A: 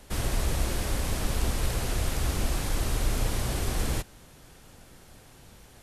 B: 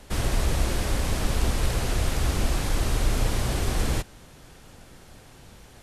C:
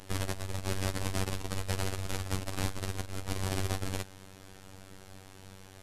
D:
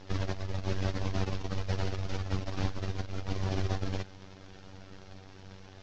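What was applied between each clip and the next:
high shelf 11000 Hz -8 dB; gain +3.5 dB
negative-ratio compressor -26 dBFS, ratio -0.5; robotiser 95.5 Hz; gain -3.5 dB
CVSD 32 kbps; gain +3 dB

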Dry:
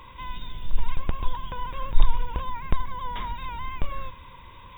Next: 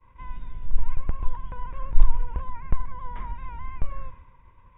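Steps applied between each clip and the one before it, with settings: expander -39 dBFS; LPF 2200 Hz 24 dB/oct; low shelf 120 Hz +8 dB; gain -6 dB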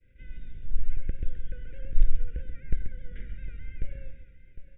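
Chebyshev band-stop 560–1500 Hz, order 4; tapped delay 94/135/756 ms -19/-9/-14.5 dB; gain -3.5 dB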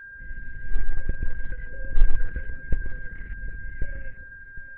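LFO low-pass saw up 1.2 Hz 840–1900 Hz; whine 1600 Hz -43 dBFS; gain +3 dB; Opus 8 kbps 48000 Hz

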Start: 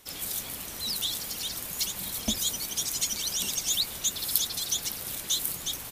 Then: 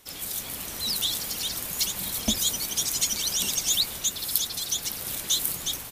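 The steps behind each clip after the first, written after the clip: AGC gain up to 3.5 dB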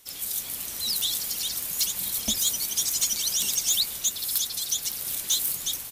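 high shelf 2900 Hz +9.5 dB; hard clip -10 dBFS, distortion -16 dB; gain -6.5 dB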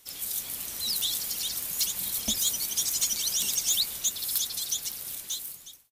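ending faded out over 1.31 s; gain -2 dB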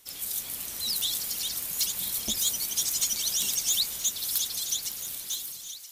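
on a send: thinning echo 0.975 s, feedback 51%, high-pass 950 Hz, level -13 dB; on the sum: core saturation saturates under 490 Hz

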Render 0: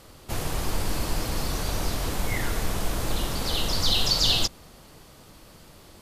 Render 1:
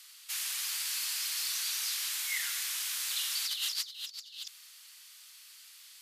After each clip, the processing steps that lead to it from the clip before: Bessel high-pass 2700 Hz, order 4; negative-ratio compressor -34 dBFS, ratio -0.5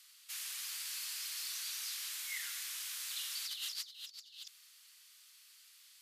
bell 850 Hz -3.5 dB 0.33 oct; gain -7.5 dB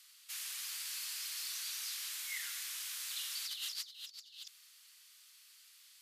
nothing audible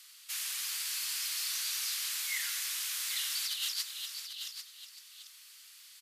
echo 0.793 s -9 dB; gain +6 dB

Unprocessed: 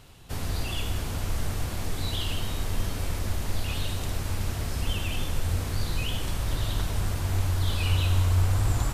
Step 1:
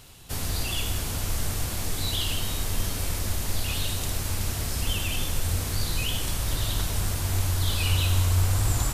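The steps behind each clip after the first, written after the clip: high shelf 3900 Hz +10 dB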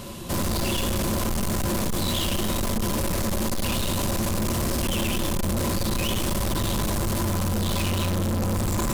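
hard clip -27.5 dBFS, distortion -7 dB; small resonant body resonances 220/340/550/1000 Hz, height 17 dB, ringing for 60 ms; soft clip -30.5 dBFS, distortion -9 dB; gain +8.5 dB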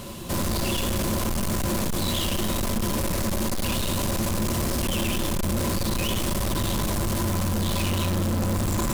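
short-mantissa float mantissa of 2-bit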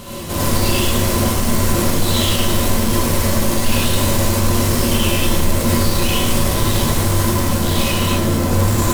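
non-linear reverb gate 0.13 s rising, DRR -6 dB; gain +2.5 dB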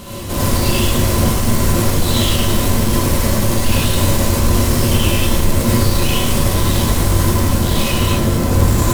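octaver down 1 oct, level 0 dB

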